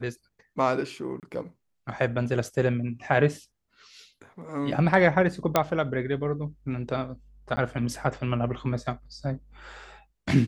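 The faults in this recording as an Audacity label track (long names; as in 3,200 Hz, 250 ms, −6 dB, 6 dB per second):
1.200000	1.230000	drop-out 28 ms
5.560000	5.560000	click −6 dBFS
7.560000	7.570000	drop-out 10 ms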